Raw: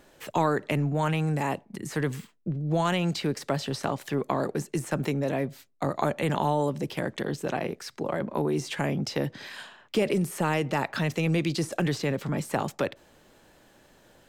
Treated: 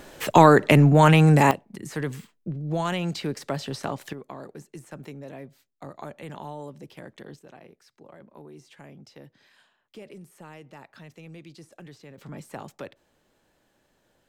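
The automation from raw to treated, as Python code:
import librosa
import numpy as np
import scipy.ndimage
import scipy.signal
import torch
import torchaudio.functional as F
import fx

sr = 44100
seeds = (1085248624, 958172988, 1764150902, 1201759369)

y = fx.gain(x, sr, db=fx.steps((0.0, 11.0), (1.51, -1.5), (4.13, -12.5), (7.39, -19.0), (12.18, -10.5)))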